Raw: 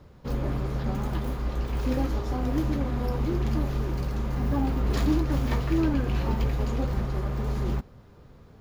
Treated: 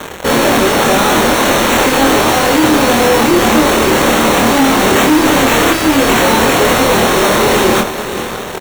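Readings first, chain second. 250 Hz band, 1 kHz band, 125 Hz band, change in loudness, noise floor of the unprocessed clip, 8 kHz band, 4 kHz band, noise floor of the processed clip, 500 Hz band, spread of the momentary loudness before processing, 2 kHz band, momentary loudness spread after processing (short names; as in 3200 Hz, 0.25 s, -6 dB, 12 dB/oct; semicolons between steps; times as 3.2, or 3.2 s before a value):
+17.0 dB, +25.5 dB, +4.5 dB, +18.0 dB, -51 dBFS, n/a, +29.5 dB, -22 dBFS, +23.0 dB, 6 LU, +29.0 dB, 3 LU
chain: HPF 380 Hz 12 dB/oct; fuzz box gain 54 dB, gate -57 dBFS; sample-and-hold 9×; doubler 26 ms -2.5 dB; diffused feedback echo 0.531 s, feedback 42%, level -11 dB; gain +2 dB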